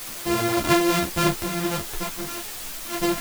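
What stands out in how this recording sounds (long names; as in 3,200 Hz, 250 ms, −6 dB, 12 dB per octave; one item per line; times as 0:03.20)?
a buzz of ramps at a fixed pitch in blocks of 128 samples
sample-and-hold tremolo, depth 75%
a quantiser's noise floor 6 bits, dither triangular
a shimmering, thickened sound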